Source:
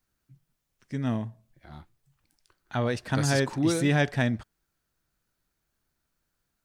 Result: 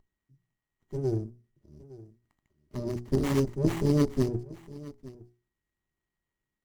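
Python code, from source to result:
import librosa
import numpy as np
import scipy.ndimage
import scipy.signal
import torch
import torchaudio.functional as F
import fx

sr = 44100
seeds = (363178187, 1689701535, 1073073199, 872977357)

p1 = x + 10.0 ** (-40.0 / 20.0) * np.sin(2.0 * np.pi * 1900.0 * np.arange(len(x)) / sr)
p2 = fx.cheby_harmonics(p1, sr, harmonics=(3, 4, 8), levels_db=(-8, -17, -26), full_scale_db=-13.0)
p3 = fx.brickwall_bandstop(p2, sr, low_hz=630.0, high_hz=4400.0)
p4 = fx.peak_eq(p3, sr, hz=420.0, db=11.0, octaves=0.71)
p5 = fx.hum_notches(p4, sr, base_hz=60, count=7)
p6 = p5 + 0.98 * np.pad(p5, (int(1.0 * sr / 1000.0), 0))[:len(p5)]
p7 = p6 + fx.echo_single(p6, sr, ms=862, db=-19.0, dry=0)
p8 = fx.running_max(p7, sr, window=9)
y = p8 * 10.0 ** (2.5 / 20.0)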